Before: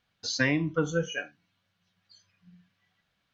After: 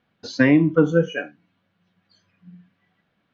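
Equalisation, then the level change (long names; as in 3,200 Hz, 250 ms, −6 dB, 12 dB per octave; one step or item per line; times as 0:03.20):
bass and treble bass −6 dB, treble −14 dB
parametric band 230 Hz +12 dB 2.3 octaves
+4.5 dB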